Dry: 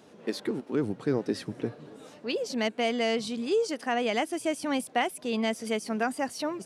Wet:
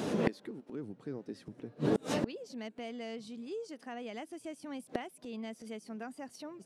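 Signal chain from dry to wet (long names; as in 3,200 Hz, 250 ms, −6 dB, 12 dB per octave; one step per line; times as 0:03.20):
parametric band 200 Hz +5.5 dB 2.3 octaves
in parallel at +2 dB: downward compressor 6 to 1, threshold −36 dBFS, peak gain reduction 17 dB
on the sum: gate with flip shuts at −27 dBFS, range −29 dB
level +9.5 dB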